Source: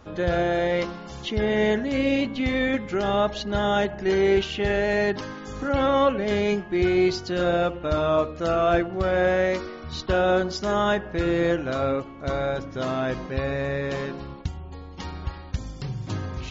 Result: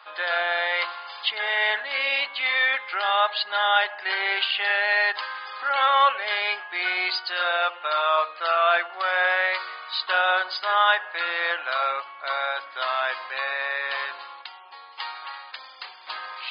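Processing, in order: HPF 900 Hz 24 dB/oct; gain +8.5 dB; MP3 56 kbps 11025 Hz

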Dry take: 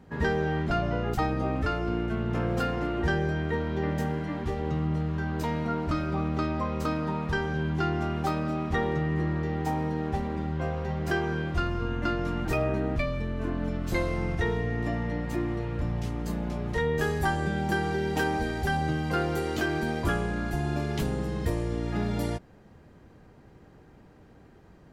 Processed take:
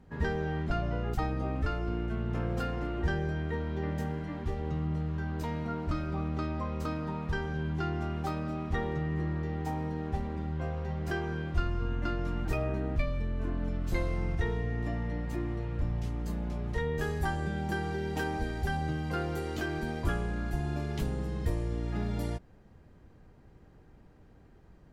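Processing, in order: low shelf 69 Hz +12 dB; gain -6.5 dB

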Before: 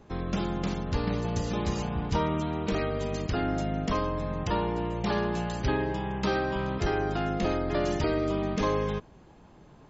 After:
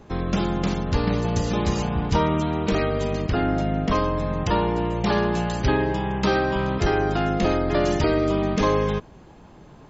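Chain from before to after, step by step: 3.13–3.92 air absorption 120 m; gain +6.5 dB

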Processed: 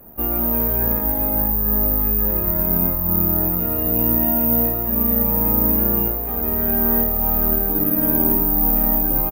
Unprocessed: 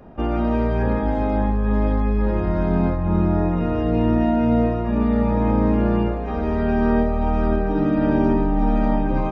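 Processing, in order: 1.29–1.97 LPF 2600 Hz -> 1700 Hz 12 dB/oct; 6.91–7.81 added noise pink -49 dBFS; echo 0.511 s -20 dB; careless resampling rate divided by 3×, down filtered, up zero stuff; gain -4.5 dB

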